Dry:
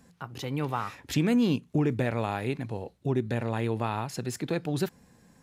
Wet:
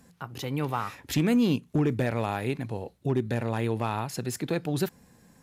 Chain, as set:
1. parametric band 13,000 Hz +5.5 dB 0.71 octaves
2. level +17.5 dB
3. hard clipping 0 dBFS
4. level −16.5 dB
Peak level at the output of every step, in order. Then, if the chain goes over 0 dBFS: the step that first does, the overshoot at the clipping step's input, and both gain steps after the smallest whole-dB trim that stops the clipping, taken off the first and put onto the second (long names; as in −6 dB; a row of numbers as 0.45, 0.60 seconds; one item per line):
−14.0, +3.5, 0.0, −16.5 dBFS
step 2, 3.5 dB
step 2 +13.5 dB, step 4 −12.5 dB